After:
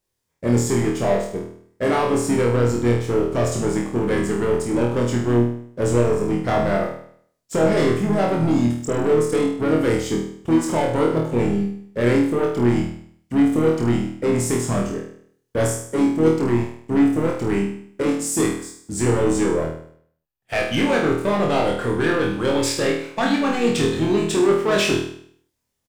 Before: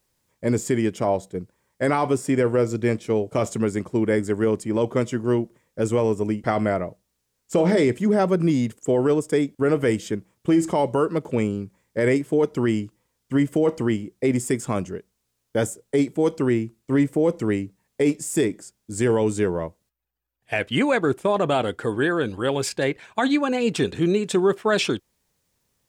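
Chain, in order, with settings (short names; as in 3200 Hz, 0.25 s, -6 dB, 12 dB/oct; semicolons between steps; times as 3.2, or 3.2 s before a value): sample leveller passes 2; harmoniser -5 st -11 dB; flutter echo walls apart 4.3 m, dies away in 0.6 s; gain -5.5 dB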